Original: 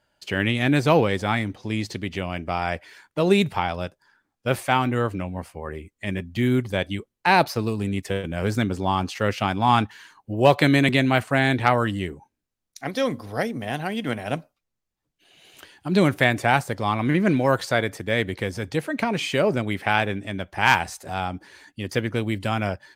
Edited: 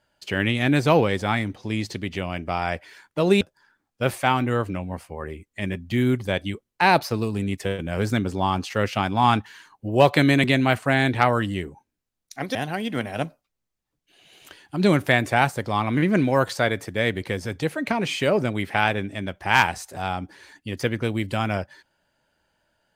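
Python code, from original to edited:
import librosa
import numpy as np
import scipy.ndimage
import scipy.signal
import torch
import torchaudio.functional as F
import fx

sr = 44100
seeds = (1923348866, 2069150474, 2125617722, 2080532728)

y = fx.edit(x, sr, fx.cut(start_s=3.41, length_s=0.45),
    fx.cut(start_s=13.0, length_s=0.67), tone=tone)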